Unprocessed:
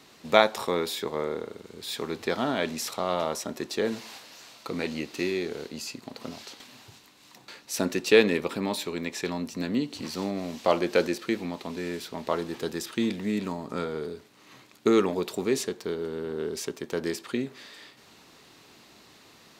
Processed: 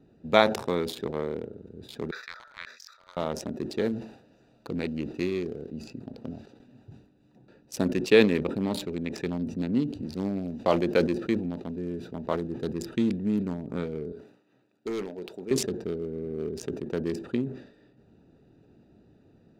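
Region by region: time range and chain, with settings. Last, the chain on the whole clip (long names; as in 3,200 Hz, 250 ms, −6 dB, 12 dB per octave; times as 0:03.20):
0:02.11–0:03.17: inverse Chebyshev high-pass filter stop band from 310 Hz, stop band 60 dB + phaser with its sweep stopped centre 2,900 Hz, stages 6
0:14.12–0:15.51: high-pass filter 900 Hz 6 dB per octave + hard clipping −26.5 dBFS
whole clip: adaptive Wiener filter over 41 samples; low-shelf EQ 230 Hz +9 dB; level that may fall only so fast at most 100 dB per second; level −2 dB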